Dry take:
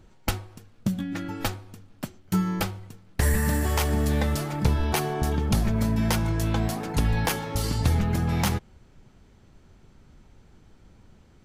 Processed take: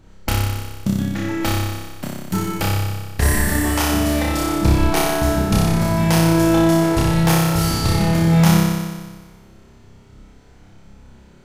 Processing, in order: flutter echo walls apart 5.2 m, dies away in 1.4 s; trim +3 dB

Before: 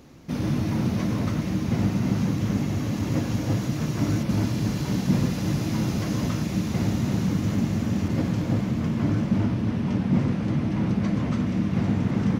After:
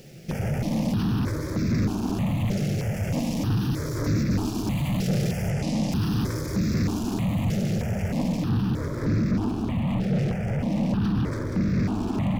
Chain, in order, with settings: comb filter that takes the minimum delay 0.39 ms; 5.50–5.92 s: low-pass 8.2 kHz 12 dB/octave; word length cut 12-bit, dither triangular; saturation -26 dBFS, distortion -9 dB; stepped phaser 3.2 Hz 270–3000 Hz; trim +7.5 dB

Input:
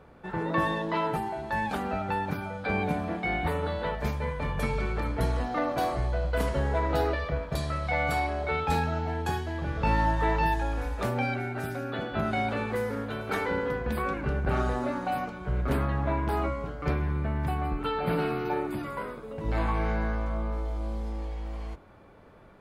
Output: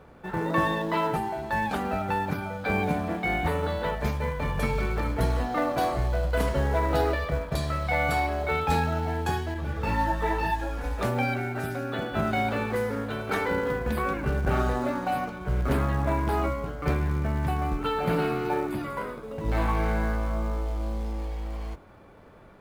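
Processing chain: in parallel at -7 dB: short-mantissa float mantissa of 2-bit; 9.54–10.84 s: on the sum: three-phase chorus; trim -1 dB

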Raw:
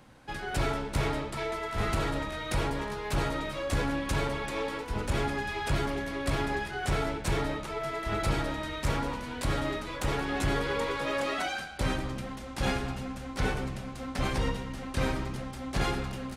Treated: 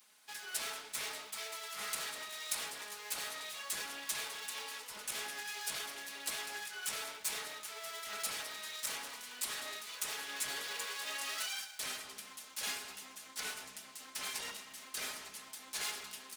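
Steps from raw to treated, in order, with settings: comb filter that takes the minimum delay 4.7 ms; differentiator; trim +4.5 dB

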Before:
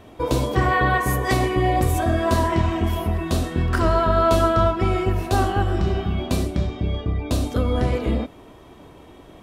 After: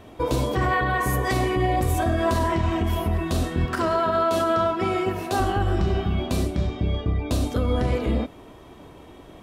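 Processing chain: 3.65–5.40 s: Bessel high-pass 200 Hz, order 2; peak limiter -13.5 dBFS, peak gain reduction 6.5 dB

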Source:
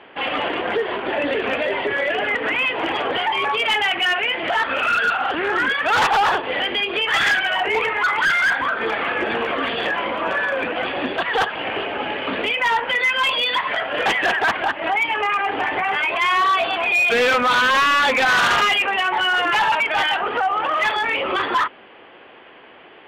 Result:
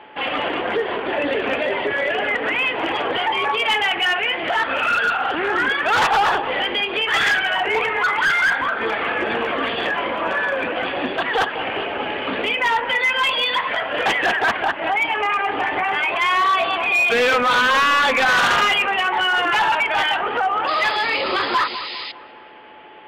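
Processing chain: whistle 860 Hz -45 dBFS; painted sound noise, 20.67–22.12 s, 1.8–5.1 kHz -31 dBFS; feedback echo behind a low-pass 202 ms, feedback 47%, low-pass 1.4 kHz, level -11 dB

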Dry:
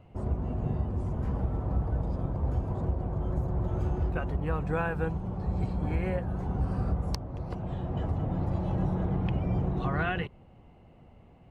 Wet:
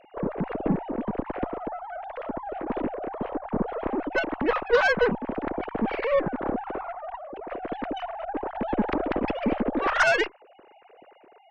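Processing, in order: formants replaced by sine waves; Chebyshev shaper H 6 -18 dB, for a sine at -11.5 dBFS; trim +1.5 dB

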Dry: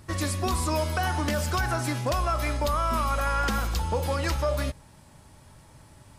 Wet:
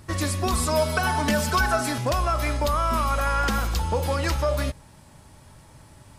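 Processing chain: 0.53–1.98 s: comb 4.6 ms, depth 86%; trim +2.5 dB

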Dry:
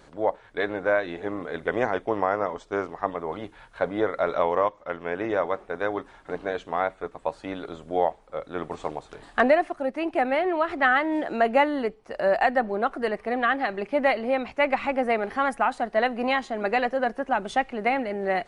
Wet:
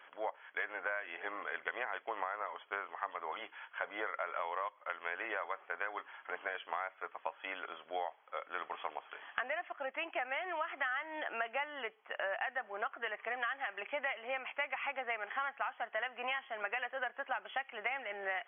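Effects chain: high-pass 1.2 kHz 12 dB/octave; in parallel at -2 dB: peak limiter -21 dBFS, peak gain reduction 10 dB; on the sum: compression 6:1, threshold -32 dBFS, peak gain reduction 15 dB; brick-wall FIR low-pass 3.4 kHz; trim -2.5 dB

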